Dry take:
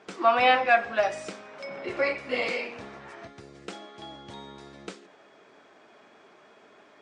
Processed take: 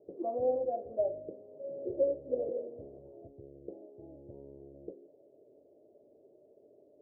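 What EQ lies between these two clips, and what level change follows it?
Chebyshev low-pass 590 Hz, order 5; bell 200 Hz -13.5 dB 0.67 oct; 0.0 dB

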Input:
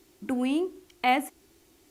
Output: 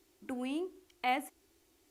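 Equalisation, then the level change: bell 170 Hz -10 dB 0.76 oct; -8.0 dB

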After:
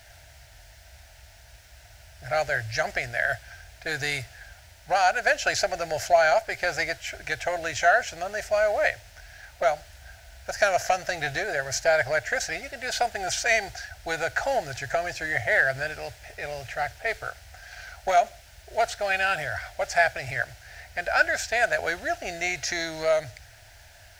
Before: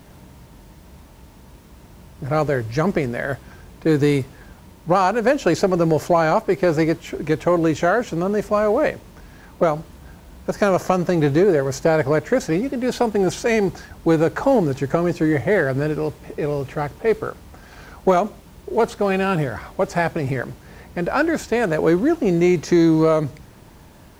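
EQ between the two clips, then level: EQ curve 110 Hz 0 dB, 170 Hz -22 dB, 330 Hz -20 dB, 470 Hz -13 dB, 690 Hz +7 dB, 1100 Hz -14 dB, 1500 Hz +9 dB, 3500 Hz +6 dB, 5300 Hz +10 dB, 11000 Hz +3 dB; -5.0 dB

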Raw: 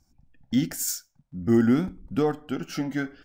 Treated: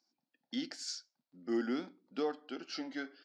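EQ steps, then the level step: HPF 280 Hz 24 dB/oct; ladder low-pass 5000 Hz, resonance 65%; +1.0 dB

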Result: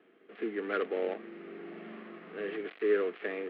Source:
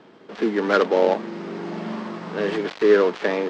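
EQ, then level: air absorption 140 m; speaker cabinet 400–2800 Hz, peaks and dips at 570 Hz -9 dB, 880 Hz -5 dB, 1500 Hz -4 dB; bell 950 Hz -14 dB 0.5 oct; -6.5 dB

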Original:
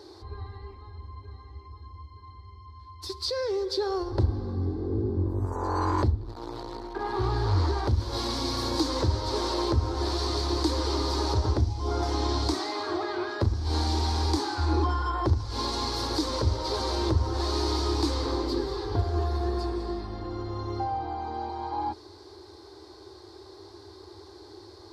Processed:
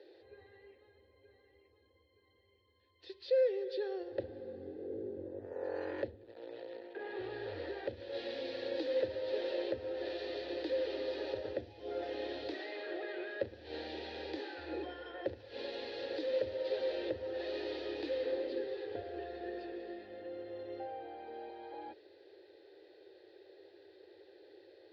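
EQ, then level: vowel filter e; HPF 75 Hz; synth low-pass 3300 Hz, resonance Q 2; +3.0 dB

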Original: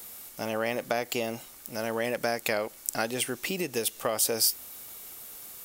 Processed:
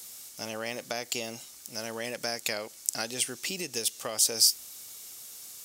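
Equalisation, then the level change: HPF 51 Hz; low shelf 360 Hz +3 dB; bell 6000 Hz +14.5 dB 2 oct; -8.5 dB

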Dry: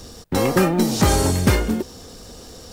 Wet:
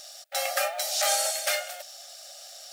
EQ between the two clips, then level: brick-wall FIR high-pass 550 Hz; Butterworth band-stop 990 Hz, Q 2.1; bell 1500 Hz -5 dB 1.1 oct; 0.0 dB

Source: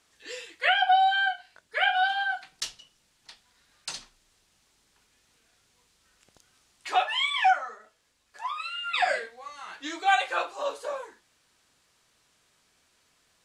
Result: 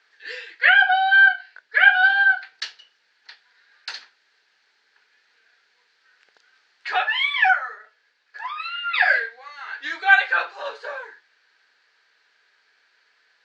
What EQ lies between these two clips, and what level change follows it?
speaker cabinet 380–5800 Hz, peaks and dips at 440 Hz +8 dB, 850 Hz +4 dB, 1600 Hz +9 dB, 4400 Hz +8 dB; bell 1900 Hz +11.5 dB 1.5 oct; notch 1100 Hz, Q 16; -5.0 dB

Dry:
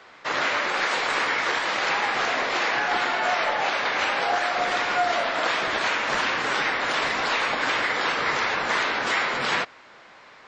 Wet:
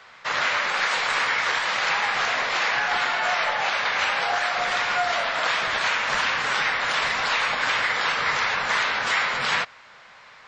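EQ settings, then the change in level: bell 320 Hz -12 dB 1.1 oct; bell 690 Hz -2 dB; +2.0 dB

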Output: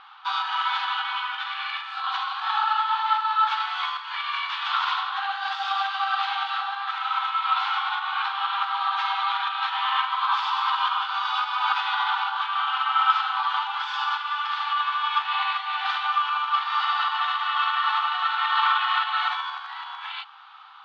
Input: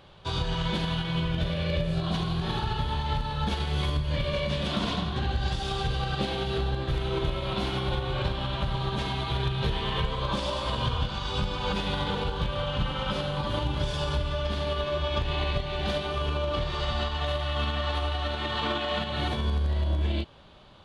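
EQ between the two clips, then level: brick-wall FIR high-pass 750 Hz; air absorption 230 m; bell 1300 Hz +12.5 dB 0.28 oct; +8.5 dB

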